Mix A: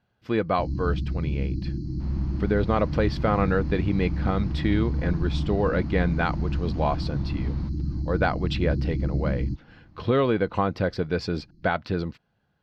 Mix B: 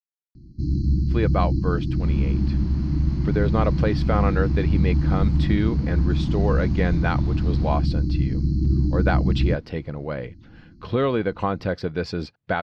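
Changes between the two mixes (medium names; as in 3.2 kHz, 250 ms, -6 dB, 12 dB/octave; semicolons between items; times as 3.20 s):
speech: entry +0.85 s; first sound +6.5 dB; second sound: add treble shelf 3.4 kHz +11.5 dB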